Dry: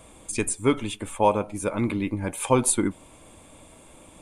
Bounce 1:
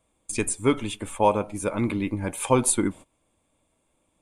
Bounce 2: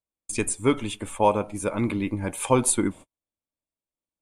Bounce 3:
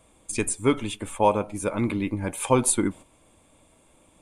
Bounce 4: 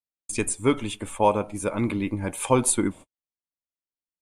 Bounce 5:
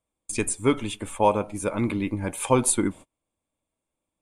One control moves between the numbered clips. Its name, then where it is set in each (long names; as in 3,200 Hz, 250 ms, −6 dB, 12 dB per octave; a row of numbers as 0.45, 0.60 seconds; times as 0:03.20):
noise gate, range: −21, −48, −9, −60, −35 decibels